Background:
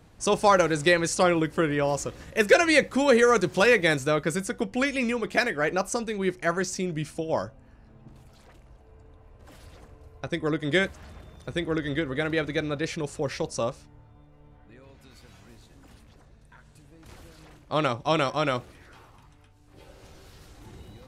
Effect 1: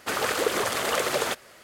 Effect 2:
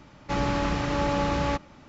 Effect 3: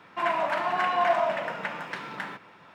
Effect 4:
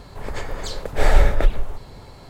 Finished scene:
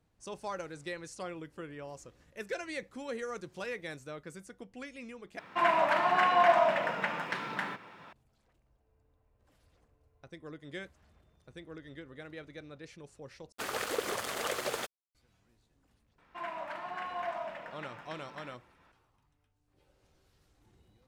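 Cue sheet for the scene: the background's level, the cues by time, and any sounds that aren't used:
background -19.5 dB
5.39 s: replace with 3
13.52 s: replace with 1 -7.5 dB + crossover distortion -38 dBFS
16.18 s: add 3 -13.5 dB
not used: 2, 4

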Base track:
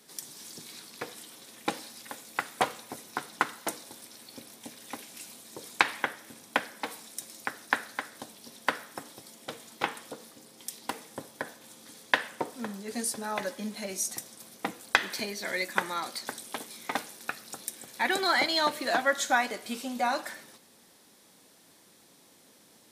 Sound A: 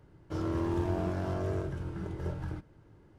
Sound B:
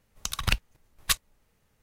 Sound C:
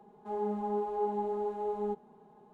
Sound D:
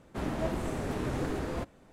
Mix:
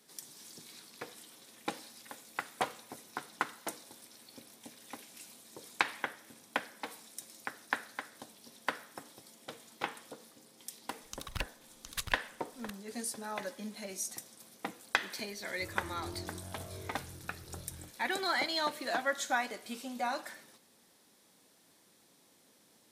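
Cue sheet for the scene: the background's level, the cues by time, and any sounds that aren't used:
base track -6.5 dB
10.88 s: add B -13 dB + delay 715 ms -4.5 dB
15.28 s: add A -16 dB + doubling 23 ms -4 dB
not used: C, D

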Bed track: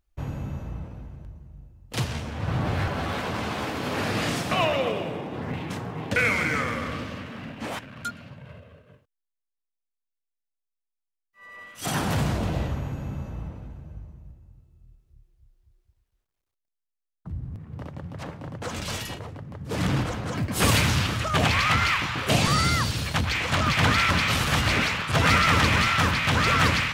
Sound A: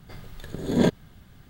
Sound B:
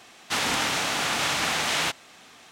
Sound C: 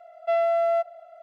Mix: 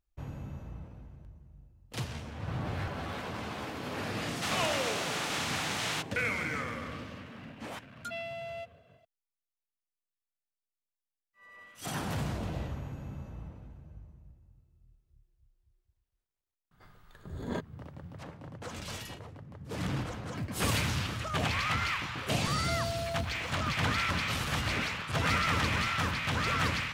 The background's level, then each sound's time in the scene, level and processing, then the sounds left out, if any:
bed track -9 dB
4.11 s: add B -8.5 dB
7.83 s: add C -17 dB + resonant high shelf 1.9 kHz +12.5 dB, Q 3
16.71 s: add A -17 dB + peaking EQ 1.2 kHz +11.5 dB 1.2 oct
22.40 s: add C -15.5 dB + jump at every zero crossing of -34.5 dBFS

